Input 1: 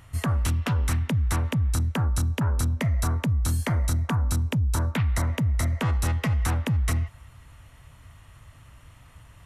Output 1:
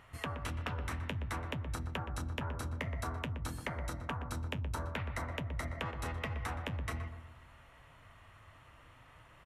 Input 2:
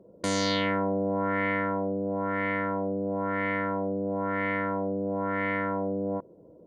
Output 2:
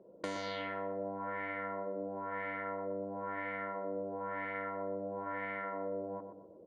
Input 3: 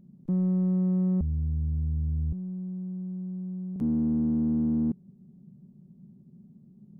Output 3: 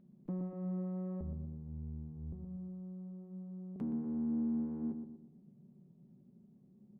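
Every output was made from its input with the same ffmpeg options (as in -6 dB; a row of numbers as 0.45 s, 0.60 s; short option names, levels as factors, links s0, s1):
-filter_complex "[0:a]bass=f=250:g=-11,treble=f=4000:g=-12,acompressor=threshold=0.02:ratio=6,flanger=delay=4.8:depth=6.4:regen=-62:speed=0.53:shape=triangular,asplit=2[s0][s1];[s1]adelay=121,lowpass=f=1200:p=1,volume=0.473,asplit=2[s2][s3];[s3]adelay=121,lowpass=f=1200:p=1,volume=0.46,asplit=2[s4][s5];[s5]adelay=121,lowpass=f=1200:p=1,volume=0.46,asplit=2[s6][s7];[s7]adelay=121,lowpass=f=1200:p=1,volume=0.46,asplit=2[s8][s9];[s9]adelay=121,lowpass=f=1200:p=1,volume=0.46[s10];[s2][s4][s6][s8][s10]amix=inputs=5:normalize=0[s11];[s0][s11]amix=inputs=2:normalize=0,volume=1.33"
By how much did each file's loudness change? -14.0 LU, -10.5 LU, -12.0 LU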